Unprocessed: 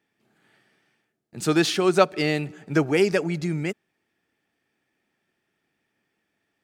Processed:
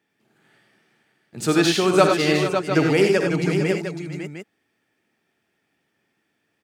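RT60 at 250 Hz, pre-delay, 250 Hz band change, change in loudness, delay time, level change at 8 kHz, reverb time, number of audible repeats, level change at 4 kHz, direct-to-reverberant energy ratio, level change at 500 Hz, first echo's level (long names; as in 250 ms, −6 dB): no reverb audible, no reverb audible, +3.5 dB, +3.5 dB, 56 ms, +4.0 dB, no reverb audible, 5, +4.0 dB, no reverb audible, +4.0 dB, −10.5 dB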